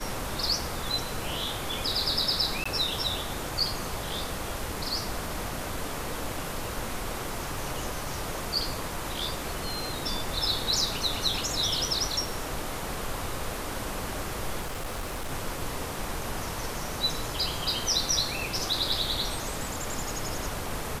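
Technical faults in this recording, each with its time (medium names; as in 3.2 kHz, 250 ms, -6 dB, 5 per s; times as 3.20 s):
2.64–2.65 s: dropout 15 ms
14.61–15.32 s: clipped -29.5 dBFS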